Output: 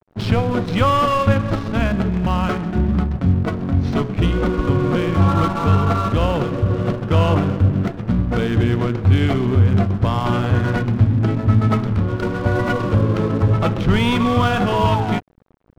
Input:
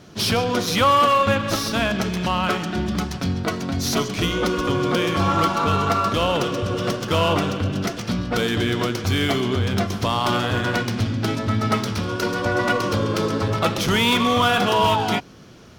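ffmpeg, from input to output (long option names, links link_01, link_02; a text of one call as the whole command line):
ffmpeg -i in.wav -af "adynamicsmooth=sensitivity=2:basefreq=930,aemphasis=mode=reproduction:type=bsi,aeval=exprs='sgn(val(0))*max(abs(val(0))-0.0188,0)':channel_layout=same" out.wav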